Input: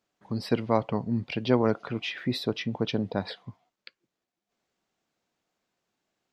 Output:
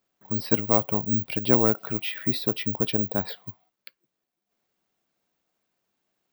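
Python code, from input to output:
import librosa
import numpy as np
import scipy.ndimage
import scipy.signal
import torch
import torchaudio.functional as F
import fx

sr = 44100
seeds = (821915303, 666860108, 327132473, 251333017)

y = (np.kron(x[::2], np.eye(2)[0]) * 2)[:len(x)]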